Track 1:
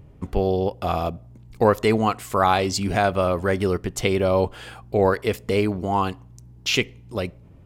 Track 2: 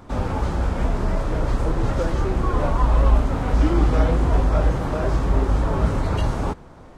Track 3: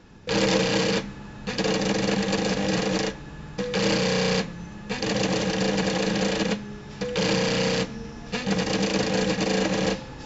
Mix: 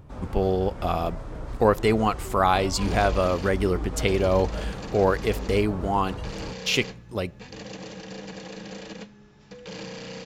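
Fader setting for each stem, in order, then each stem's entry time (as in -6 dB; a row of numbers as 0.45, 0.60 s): -2.0, -13.5, -14.5 dB; 0.00, 0.00, 2.50 s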